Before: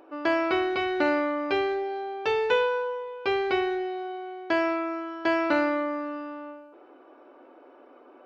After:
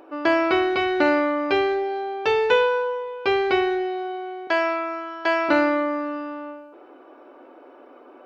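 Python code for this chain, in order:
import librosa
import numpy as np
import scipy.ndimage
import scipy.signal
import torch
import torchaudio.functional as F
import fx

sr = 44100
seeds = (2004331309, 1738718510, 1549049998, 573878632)

y = fx.highpass(x, sr, hz=510.0, slope=12, at=(4.47, 5.49))
y = y * librosa.db_to_amplitude(5.0)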